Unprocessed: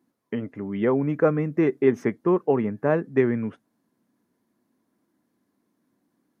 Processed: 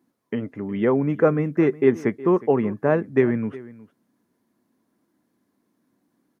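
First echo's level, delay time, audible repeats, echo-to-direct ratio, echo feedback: −19.0 dB, 364 ms, 1, −19.0 dB, repeats not evenly spaced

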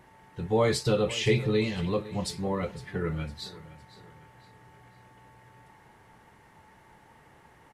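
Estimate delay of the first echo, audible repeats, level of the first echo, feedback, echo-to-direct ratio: 508 ms, 3, −17.5 dB, 41%, −16.5 dB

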